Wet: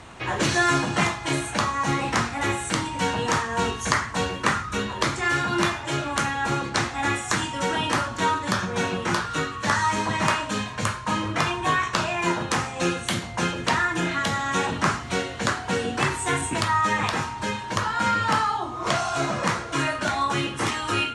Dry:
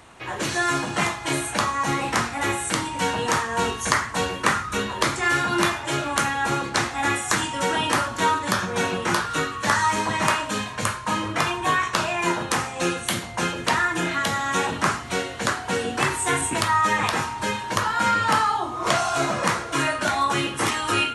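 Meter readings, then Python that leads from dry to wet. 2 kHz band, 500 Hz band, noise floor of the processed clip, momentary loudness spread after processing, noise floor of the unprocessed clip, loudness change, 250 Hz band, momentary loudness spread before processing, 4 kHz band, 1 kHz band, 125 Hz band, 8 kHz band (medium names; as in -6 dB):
-1.5 dB, -1.0 dB, -35 dBFS, 5 LU, -34 dBFS, -1.5 dB, +0.5 dB, 5 LU, -1.5 dB, -1.5 dB, +2.0 dB, -3.0 dB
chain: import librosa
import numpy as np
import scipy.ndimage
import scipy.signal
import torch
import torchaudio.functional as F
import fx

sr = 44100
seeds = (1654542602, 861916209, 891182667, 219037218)

y = scipy.signal.sosfilt(scipy.signal.butter(2, 7800.0, 'lowpass', fs=sr, output='sos'), x)
y = fx.bass_treble(y, sr, bass_db=4, treble_db=1)
y = fx.rider(y, sr, range_db=10, speed_s=2.0)
y = F.gain(torch.from_numpy(y), -2.0).numpy()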